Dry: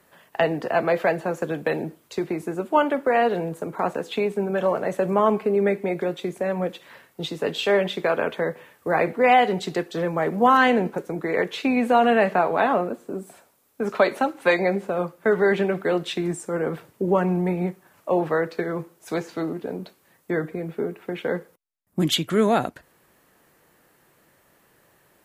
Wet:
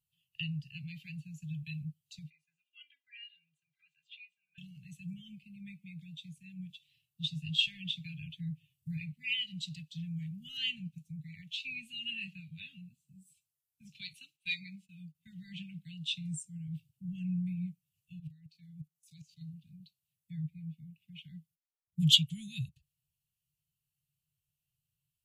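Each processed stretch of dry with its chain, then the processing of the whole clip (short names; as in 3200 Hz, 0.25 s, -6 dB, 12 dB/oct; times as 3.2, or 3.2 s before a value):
2.3–4.58 band-pass 1500 Hz, Q 1.7 + comb 2.5 ms, depth 94%
7.28–8.97 low shelf 250 Hz +5.5 dB + comb 7.4 ms, depth 32%
14.13–15.15 HPF 160 Hz + gate -42 dBFS, range -12 dB + bell 980 Hz +14.5 dB 0.38 oct
18.19–19.41 high shelf 3400 Hz +3.5 dB + level quantiser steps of 16 dB
whole clip: Chebyshev band-stop 150–2700 Hz, order 4; spectral expander 1.5:1; gain +1 dB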